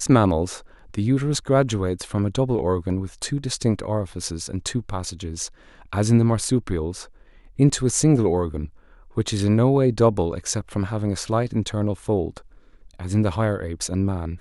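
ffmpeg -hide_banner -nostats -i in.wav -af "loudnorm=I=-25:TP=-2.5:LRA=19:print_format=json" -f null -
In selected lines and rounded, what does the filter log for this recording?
"input_i" : "-23.1",
"input_tp" : "-3.4",
"input_lra" : "4.1",
"input_thresh" : "-33.6",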